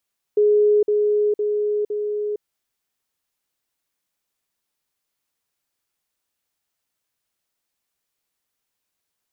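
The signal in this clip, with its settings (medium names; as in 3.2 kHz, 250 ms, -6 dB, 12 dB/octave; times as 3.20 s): level ladder 418 Hz -12.5 dBFS, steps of -3 dB, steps 4, 0.46 s 0.05 s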